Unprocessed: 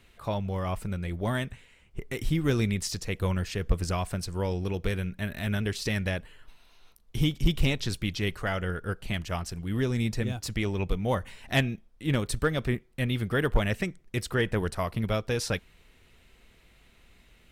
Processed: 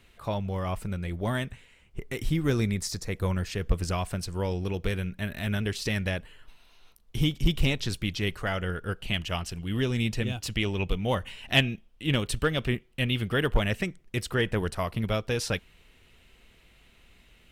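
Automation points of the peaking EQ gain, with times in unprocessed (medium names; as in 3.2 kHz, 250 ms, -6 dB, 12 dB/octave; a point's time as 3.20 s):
peaking EQ 2.9 kHz 0.45 oct
2.25 s +1 dB
2.99 s -9.5 dB
3.67 s +2.5 dB
8.50 s +2.5 dB
9.20 s +11 dB
13.27 s +11 dB
13.68 s +4 dB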